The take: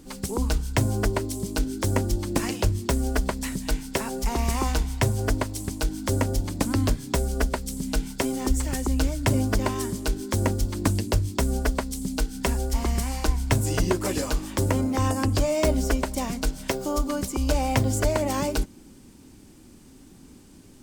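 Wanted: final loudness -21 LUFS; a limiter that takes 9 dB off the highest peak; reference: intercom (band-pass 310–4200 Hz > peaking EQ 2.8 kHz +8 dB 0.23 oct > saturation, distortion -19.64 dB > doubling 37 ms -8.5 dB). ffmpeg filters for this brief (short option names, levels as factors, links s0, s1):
-filter_complex "[0:a]alimiter=limit=0.158:level=0:latency=1,highpass=310,lowpass=4200,equalizer=f=2800:t=o:w=0.23:g=8,asoftclip=threshold=0.0944,asplit=2[s0][s1];[s1]adelay=37,volume=0.376[s2];[s0][s2]amix=inputs=2:normalize=0,volume=4.22"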